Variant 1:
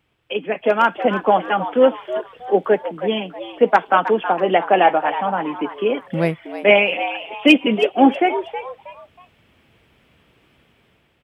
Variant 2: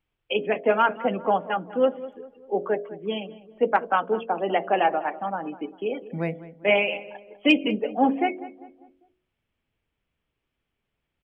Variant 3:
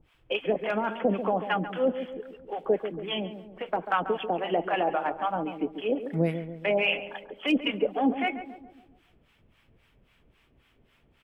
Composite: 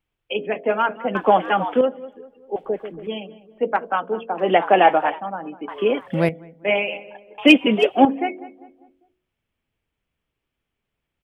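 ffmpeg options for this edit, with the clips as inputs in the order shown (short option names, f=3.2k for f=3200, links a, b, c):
-filter_complex "[0:a]asplit=4[a][b][c][d];[1:a]asplit=6[e][f][g][h][i][j];[e]atrim=end=1.152[k];[a]atrim=start=1.148:end=1.812[l];[f]atrim=start=1.808:end=2.562[m];[2:a]atrim=start=2.558:end=3.072[n];[g]atrim=start=3.068:end=4.5[o];[b]atrim=start=4.34:end=5.21[p];[h]atrim=start=5.05:end=5.682[q];[c]atrim=start=5.678:end=6.292[r];[i]atrim=start=6.288:end=7.382[s];[d]atrim=start=7.378:end=8.052[t];[j]atrim=start=8.048[u];[k][l]acrossfade=d=0.004:c1=hsin:c2=hsin[v];[v][m]acrossfade=d=0.004:c1=hsin:c2=hsin[w];[w][n]acrossfade=d=0.004:c1=hsin:c2=hsin[x];[x][o]acrossfade=d=0.004:c1=hsin:c2=hsin[y];[y][p]acrossfade=d=0.16:c1=tri:c2=tri[z];[z][q]acrossfade=d=0.16:c1=tri:c2=tri[aa];[aa][r]acrossfade=d=0.004:c1=hsin:c2=hsin[ab];[ab][s]acrossfade=d=0.004:c1=hsin:c2=hsin[ac];[ac][t]acrossfade=d=0.004:c1=hsin:c2=hsin[ad];[ad][u]acrossfade=d=0.004:c1=hsin:c2=hsin"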